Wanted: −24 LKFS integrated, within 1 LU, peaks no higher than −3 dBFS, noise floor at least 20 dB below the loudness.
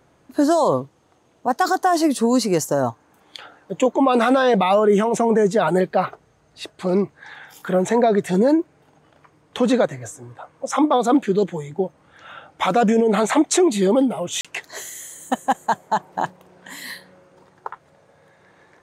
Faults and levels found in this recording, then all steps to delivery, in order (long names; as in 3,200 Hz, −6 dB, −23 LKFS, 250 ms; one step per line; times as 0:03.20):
number of dropouts 1; longest dropout 36 ms; integrated loudness −19.5 LKFS; sample peak −5.5 dBFS; target loudness −24.0 LKFS
→ repair the gap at 0:14.41, 36 ms
level −4.5 dB